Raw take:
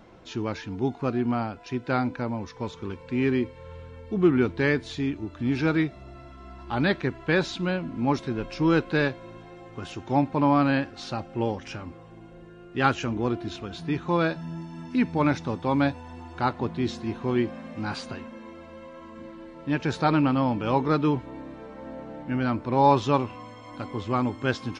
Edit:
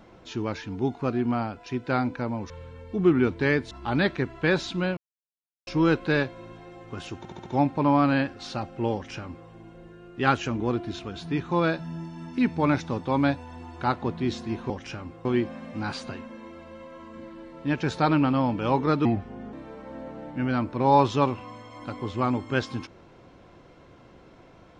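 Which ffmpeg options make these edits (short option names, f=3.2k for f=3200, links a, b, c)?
-filter_complex "[0:a]asplit=13[a][b][c][d][e][f][g][h][i][j][k][l][m];[a]atrim=end=2.502[n];[b]atrim=start=3.678:end=4.892[o];[c]atrim=start=6.558:end=7.82,asetpts=PTS-STARTPTS,afade=t=out:st=1.258:d=0.004:c=hsin[p];[d]atrim=start=7.82:end=8.52,asetpts=PTS-STARTPTS,volume=0[q];[e]atrim=start=8.52:end=10.102,asetpts=PTS-STARTPTS,afade=t=in:d=0.004:c=hsin[r];[f]atrim=start=10.028:end=10.102[s];[g]atrim=start=10.028:end=10.102[t];[h]atrim=start=10.028:end=10.102[u];[i]atrim=start=10.028:end=17.272[v];[j]atrim=start=11.508:end=12.062[w];[k]atrim=start=17.268:end=21.074[x];[l]atrim=start=21.07:end=21.45,asetpts=PTS-STARTPTS,asetrate=34839,aresample=44100[y];[m]atrim=start=21.446[z];[n][o]acrossfade=d=0.004:c1=hsin:c2=hsin[aa];[p][q][r]concat=n=3:v=0:a=1[ab];[aa][ab]acrossfade=d=0.004:c1=hsin:c2=hsin[ac];[ac][s]acrossfade=d=0.004:c1=hsin:c2=hsin[ad];[ad][t]acrossfade=d=0.004:c1=hsin:c2=hsin[ae];[ae][u]acrossfade=d=0.004:c1=hsin:c2=hsin[af];[af][v]acrossfade=d=0.004:c1=hsin:c2=hsin[ag];[ag][w]acrossfade=d=0.004:c1=hsin:c2=hsin[ah];[ah][x]acrossfade=d=0.004:c1=hsin:c2=hsin[ai];[ai][y]acrossfade=d=0.004:c1=hsin:c2=hsin[aj];[aj][z]acrossfade=d=0.004:c1=hsin:c2=hsin"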